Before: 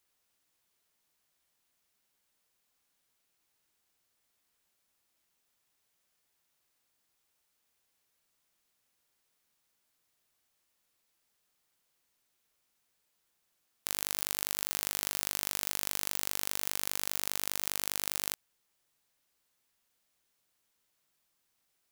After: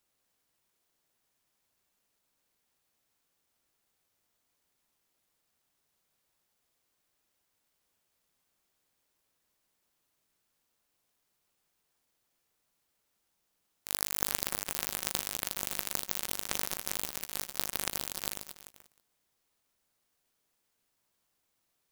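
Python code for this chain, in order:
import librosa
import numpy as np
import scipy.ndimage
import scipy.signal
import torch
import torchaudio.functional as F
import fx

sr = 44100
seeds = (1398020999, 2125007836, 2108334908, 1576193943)

y = fx.peak_eq(x, sr, hz=2500.0, db=9.5, octaves=1.3, at=(13.92, 14.36))
y = fx.echo_feedback(y, sr, ms=175, feedback_pct=37, wet_db=-8.0)
y = fx.clock_jitter(y, sr, seeds[0], jitter_ms=0.14)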